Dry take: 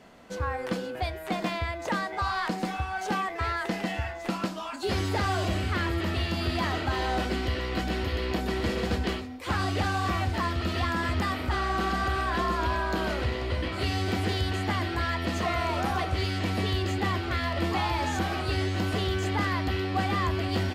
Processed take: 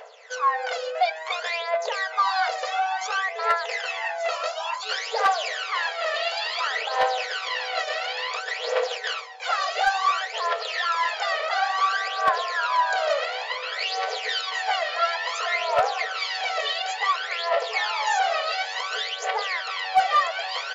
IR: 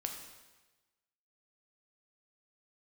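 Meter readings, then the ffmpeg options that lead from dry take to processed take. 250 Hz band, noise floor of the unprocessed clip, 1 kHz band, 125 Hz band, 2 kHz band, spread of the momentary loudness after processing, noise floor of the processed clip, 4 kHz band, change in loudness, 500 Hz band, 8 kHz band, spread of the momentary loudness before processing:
under -30 dB, -37 dBFS, +7.0 dB, under -35 dB, +6.0 dB, 5 LU, -35 dBFS, +7.0 dB, +4.0 dB, +3.5 dB, +5.5 dB, 4 LU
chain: -filter_complex "[0:a]asplit=2[s0][s1];[s1]alimiter=level_in=1.26:limit=0.0631:level=0:latency=1:release=38,volume=0.794,volume=0.841[s2];[s0][s2]amix=inputs=2:normalize=0,bandreject=f=60:t=h:w=6,bandreject=f=120:t=h:w=6,bandreject=f=180:t=h:w=6,bandreject=f=240:t=h:w=6,bandreject=f=300:t=h:w=6,bandreject=f=360:t=h:w=6,bandreject=f=420:t=h:w=6,bandreject=f=480:t=h:w=6,bandreject=f=540:t=h:w=6,aphaser=in_gain=1:out_gain=1:delay=1.7:decay=0.75:speed=0.57:type=triangular,afftfilt=real='re*between(b*sr/4096,420,7400)':imag='im*between(b*sr/4096,420,7400)':win_size=4096:overlap=0.75,asoftclip=type=hard:threshold=0.251"

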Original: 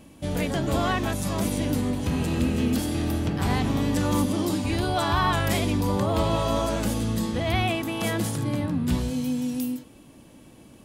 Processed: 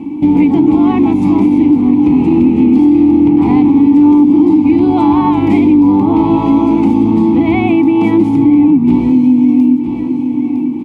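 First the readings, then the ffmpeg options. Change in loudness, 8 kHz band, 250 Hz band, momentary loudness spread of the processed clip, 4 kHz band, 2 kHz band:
+16.0 dB, under -15 dB, +20.0 dB, 3 LU, no reading, +3.0 dB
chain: -filter_complex "[0:a]asplit=3[s0][s1][s2];[s0]bandpass=f=300:t=q:w=8,volume=1[s3];[s1]bandpass=f=870:t=q:w=8,volume=0.501[s4];[s2]bandpass=f=2240:t=q:w=8,volume=0.355[s5];[s3][s4][s5]amix=inputs=3:normalize=0,asplit=2[s6][s7];[s7]aecho=0:1:958|1916|2874:0.178|0.0676|0.0257[s8];[s6][s8]amix=inputs=2:normalize=0,acompressor=threshold=0.00562:ratio=2.5,tiltshelf=f=970:g=6,apsyclip=44.7,volume=0.75"

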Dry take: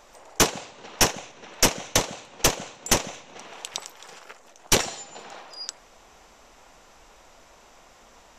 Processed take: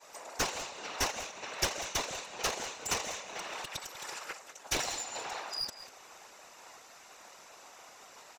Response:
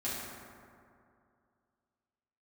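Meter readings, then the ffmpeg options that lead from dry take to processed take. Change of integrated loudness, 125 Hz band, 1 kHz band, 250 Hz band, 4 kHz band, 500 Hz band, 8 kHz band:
-11.0 dB, -14.5 dB, -7.5 dB, -15.0 dB, -9.0 dB, -10.5 dB, -11.0 dB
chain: -filter_complex "[0:a]highpass=f=660:p=1,bandreject=f=3200:w=11,agate=range=0.0224:threshold=0.00282:ratio=3:detection=peak,acrossover=split=6400[s0][s1];[s1]acompressor=threshold=0.00631:ratio=4:attack=1:release=60[s2];[s0][s2]amix=inputs=2:normalize=0,highshelf=f=10000:g=4.5,asplit=2[s3][s4];[s4]acompressor=threshold=0.0112:ratio=6,volume=0.891[s5];[s3][s5]amix=inputs=2:normalize=0,alimiter=limit=0.188:level=0:latency=1:release=175,aeval=exprs='clip(val(0),-1,0.0266)':c=same,afftfilt=real='hypot(re,im)*cos(2*PI*random(0))':imag='hypot(re,im)*sin(2*PI*random(1))':win_size=512:overlap=0.75,aecho=1:1:194:0.178,volume=1.78"

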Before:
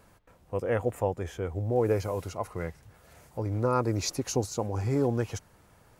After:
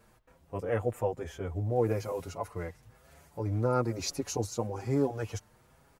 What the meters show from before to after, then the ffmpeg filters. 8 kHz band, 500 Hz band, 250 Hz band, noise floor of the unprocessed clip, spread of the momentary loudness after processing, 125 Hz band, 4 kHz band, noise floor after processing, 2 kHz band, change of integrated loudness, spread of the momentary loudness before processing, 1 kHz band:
-3.0 dB, -2.5 dB, -2.5 dB, -60 dBFS, 11 LU, -2.5 dB, -2.5 dB, -63 dBFS, -3.0 dB, -2.5 dB, 10 LU, -3.0 dB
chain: -filter_complex "[0:a]asplit=2[s0][s1];[s1]adelay=6.2,afreqshift=1.1[s2];[s0][s2]amix=inputs=2:normalize=1"

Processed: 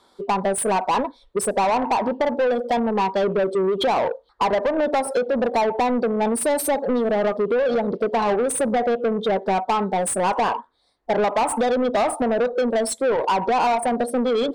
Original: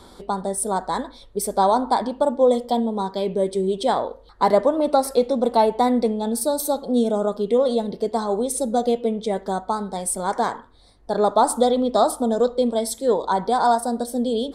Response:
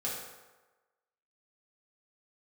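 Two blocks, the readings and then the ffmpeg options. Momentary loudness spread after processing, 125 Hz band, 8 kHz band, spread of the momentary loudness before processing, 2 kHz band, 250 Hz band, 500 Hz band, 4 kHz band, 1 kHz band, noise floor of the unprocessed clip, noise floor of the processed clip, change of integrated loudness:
3 LU, no reading, 0.0 dB, 7 LU, +8.0 dB, -1.5 dB, 0.0 dB, +0.5 dB, +0.5 dB, -48 dBFS, -58 dBFS, 0.0 dB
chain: -filter_complex "[0:a]afftdn=nr=25:nf=-28,acompressor=threshold=0.0708:ratio=12,asplit=2[s0][s1];[s1]highpass=f=720:p=1,volume=11.2,asoftclip=type=tanh:threshold=0.168[s2];[s0][s2]amix=inputs=2:normalize=0,lowpass=f=4900:p=1,volume=0.501,volume=1.33"

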